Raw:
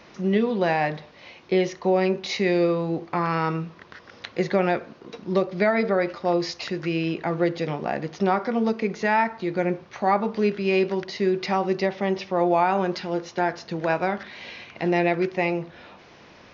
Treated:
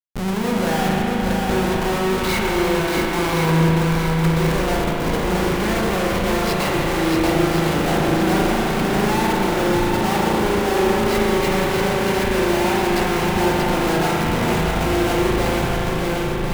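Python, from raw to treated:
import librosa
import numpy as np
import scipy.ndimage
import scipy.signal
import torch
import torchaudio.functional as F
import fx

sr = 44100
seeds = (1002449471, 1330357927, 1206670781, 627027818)

y = fx.high_shelf(x, sr, hz=2900.0, db=-9.5)
y = fx.notch_comb(y, sr, f0_hz=630.0)
y = fx.schmitt(y, sr, flips_db=-40.0)
y = fx.echo_swing(y, sr, ms=1057, ratio=1.5, feedback_pct=47, wet_db=-4.0)
y = fx.rev_spring(y, sr, rt60_s=3.2, pass_ms=(37,), chirp_ms=30, drr_db=-1.5)
y = y * 10.0 ** (1.5 / 20.0)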